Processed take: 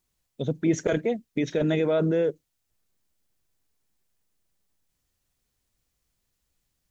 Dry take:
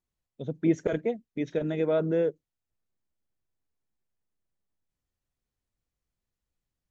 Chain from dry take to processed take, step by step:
in parallel at −2 dB: compressor whose output falls as the input rises −30 dBFS, ratio −0.5
on the sum: high-shelf EQ 2,700 Hz +7.5 dB

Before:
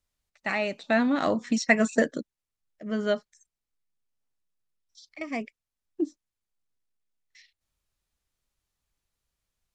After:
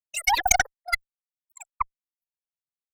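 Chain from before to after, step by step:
spectral dynamics exaggerated over time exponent 3
change of speed 3.32×
harmonic generator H 4 −15 dB, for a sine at −9 dBFS
level +7 dB

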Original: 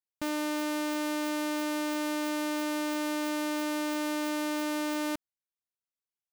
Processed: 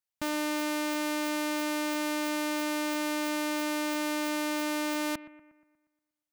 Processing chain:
parametric band 390 Hz −11.5 dB 0.45 octaves
bucket-brigade delay 119 ms, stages 2,048, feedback 51%, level −16 dB
level +2.5 dB

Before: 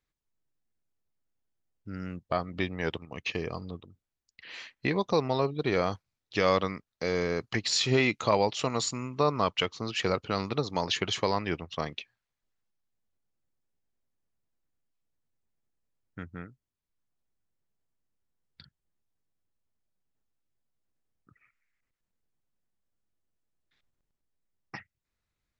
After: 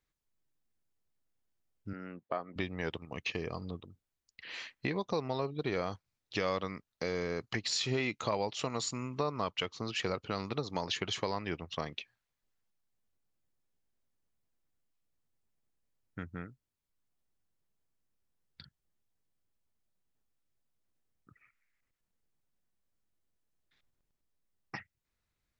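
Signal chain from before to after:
downward compressor 2 to 1, threshold −35 dBFS, peak gain reduction 9 dB
0:01.93–0:02.56: band-pass filter 270–2,300 Hz

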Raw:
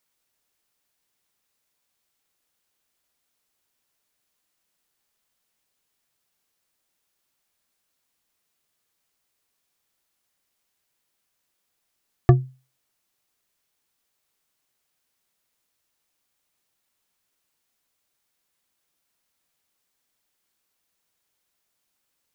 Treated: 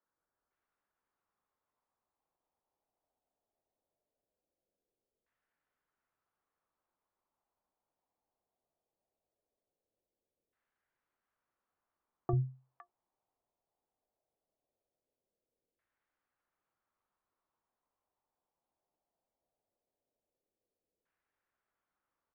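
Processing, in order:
brickwall limiter −14.5 dBFS, peak gain reduction 11 dB
three-band delay without the direct sound mids, lows, highs 40/510 ms, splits 150/1,400 Hz
auto-filter low-pass saw down 0.19 Hz 460–1,700 Hz
level −6 dB

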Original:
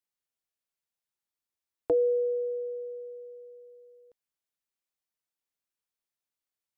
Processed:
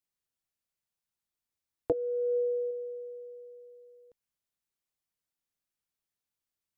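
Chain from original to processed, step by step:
bass and treble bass +7 dB, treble +1 dB
0:01.92–0:02.71: compressor whose output falls as the input rises −29 dBFS, ratio −1
level −1 dB

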